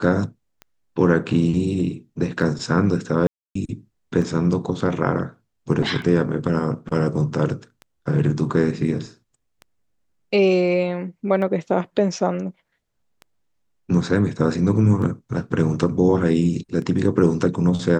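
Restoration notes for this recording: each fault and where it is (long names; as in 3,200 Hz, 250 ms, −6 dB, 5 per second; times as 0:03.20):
scratch tick 33 1/3 rpm −23 dBFS
0:03.27–0:03.55: drop-out 284 ms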